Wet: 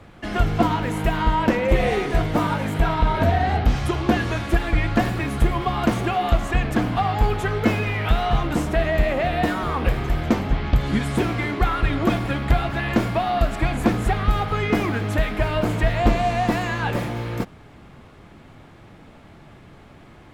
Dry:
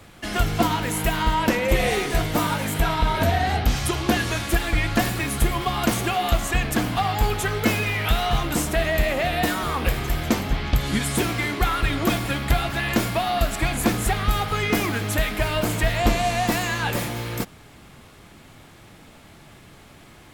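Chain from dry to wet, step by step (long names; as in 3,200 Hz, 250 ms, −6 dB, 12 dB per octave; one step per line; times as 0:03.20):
low-pass filter 1,500 Hz 6 dB per octave
level +2.5 dB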